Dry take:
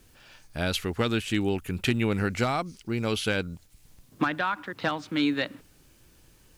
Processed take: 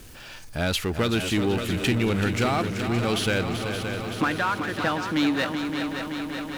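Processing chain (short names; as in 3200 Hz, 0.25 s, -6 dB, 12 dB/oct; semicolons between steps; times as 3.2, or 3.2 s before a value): multi-head echo 0.19 s, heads second and third, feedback 66%, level -10.5 dB; power-law curve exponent 0.7; gain -1 dB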